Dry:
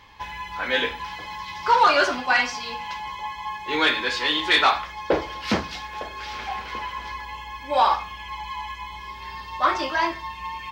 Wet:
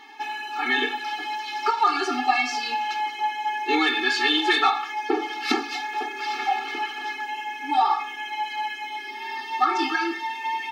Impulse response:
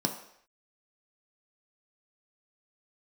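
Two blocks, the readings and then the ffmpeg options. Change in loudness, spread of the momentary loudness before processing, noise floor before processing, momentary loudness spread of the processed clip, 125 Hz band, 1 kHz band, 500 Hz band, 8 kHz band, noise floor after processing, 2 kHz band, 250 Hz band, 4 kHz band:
-1.0 dB, 16 LU, -39 dBFS, 10 LU, under -25 dB, +0.5 dB, -4.5 dB, +0.5 dB, -36 dBFS, -0.5 dB, +2.5 dB, -1.0 dB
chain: -af "equalizer=f=720:t=o:w=1.8:g=2.5,acompressor=threshold=-20dB:ratio=12,afftfilt=real='re*eq(mod(floor(b*sr/1024/230),2),1)':imag='im*eq(mod(floor(b*sr/1024/230),2),1)':win_size=1024:overlap=0.75,volume=6.5dB"

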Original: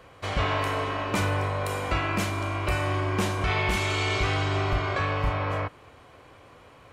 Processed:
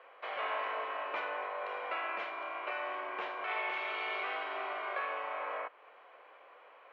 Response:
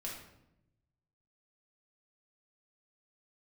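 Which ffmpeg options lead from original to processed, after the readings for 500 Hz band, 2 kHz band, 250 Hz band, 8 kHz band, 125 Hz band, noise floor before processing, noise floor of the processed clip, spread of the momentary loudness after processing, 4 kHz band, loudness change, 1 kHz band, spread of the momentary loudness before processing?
-10.0 dB, -7.5 dB, -24.0 dB, under -35 dB, under -40 dB, -52 dBFS, -58 dBFS, 22 LU, -13.0 dB, -10.0 dB, -7.0 dB, 4 LU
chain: -filter_complex "[0:a]lowpass=f=2.8k:w=0.5412,lowpass=f=2.8k:w=1.3066,asplit=2[a][b];[b]acompressor=threshold=-39dB:ratio=6,volume=-2dB[c];[a][c]amix=inputs=2:normalize=0,highpass=f=500:w=0.5412,highpass=f=500:w=1.3066,volume=-8.5dB"

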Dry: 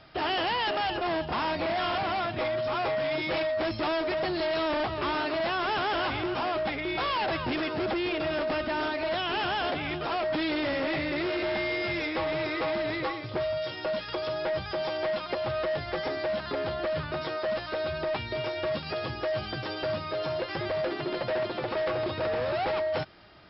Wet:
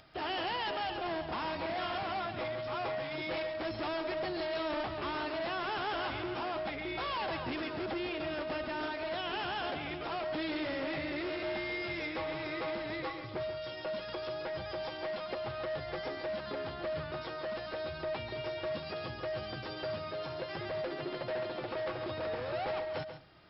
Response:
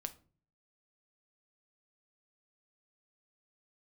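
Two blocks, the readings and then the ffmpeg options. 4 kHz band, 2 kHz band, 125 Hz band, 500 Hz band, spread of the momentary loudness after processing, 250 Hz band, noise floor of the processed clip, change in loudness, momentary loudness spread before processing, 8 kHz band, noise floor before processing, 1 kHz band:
-7.0 dB, -7.0 dB, -7.0 dB, -7.5 dB, 4 LU, -7.0 dB, -43 dBFS, -7.0 dB, 4 LU, n/a, -38 dBFS, -7.0 dB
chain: -filter_complex "[0:a]acompressor=mode=upward:threshold=-50dB:ratio=2.5,asplit=2[a][b];[1:a]atrim=start_sample=2205,adelay=138[c];[b][c]afir=irnorm=-1:irlink=0,volume=-7dB[d];[a][d]amix=inputs=2:normalize=0,volume=-7.5dB"

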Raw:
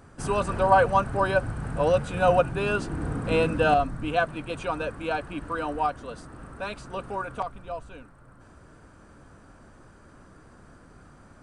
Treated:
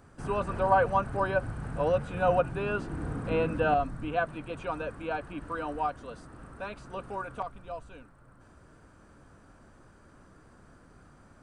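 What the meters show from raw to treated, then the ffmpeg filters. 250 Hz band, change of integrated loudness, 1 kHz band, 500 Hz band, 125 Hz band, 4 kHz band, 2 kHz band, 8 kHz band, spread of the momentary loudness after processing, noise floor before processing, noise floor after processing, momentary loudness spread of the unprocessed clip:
-4.5 dB, -4.5 dB, -4.5 dB, -4.5 dB, -4.5 dB, -9.5 dB, -5.5 dB, under -10 dB, 15 LU, -53 dBFS, -57 dBFS, 15 LU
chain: -filter_complex "[0:a]acrossover=split=2800[a][b];[b]acompressor=threshold=-51dB:ratio=4:attack=1:release=60[c];[a][c]amix=inputs=2:normalize=0,volume=-4.5dB"

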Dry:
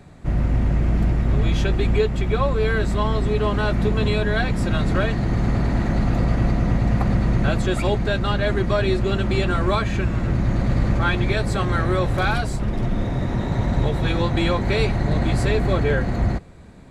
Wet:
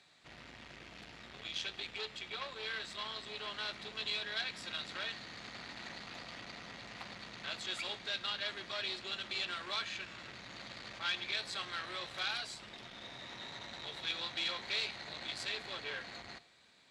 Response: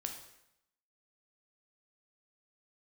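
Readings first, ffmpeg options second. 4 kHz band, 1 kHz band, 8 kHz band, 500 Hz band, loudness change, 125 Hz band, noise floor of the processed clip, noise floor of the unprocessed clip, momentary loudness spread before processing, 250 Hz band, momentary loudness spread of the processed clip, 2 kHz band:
-4.0 dB, -19.0 dB, -10.0 dB, -26.5 dB, -18.5 dB, -39.5 dB, -55 dBFS, -25 dBFS, 3 LU, -32.0 dB, 12 LU, -12.5 dB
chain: -filter_complex "[0:a]asoftclip=type=tanh:threshold=-18dB,bandpass=f=3.9k:t=q:w=1.7:csg=0,asplit=2[a][b];[1:a]atrim=start_sample=2205[c];[b][c]afir=irnorm=-1:irlink=0,volume=-8dB[d];[a][d]amix=inputs=2:normalize=0,volume=-2.5dB"

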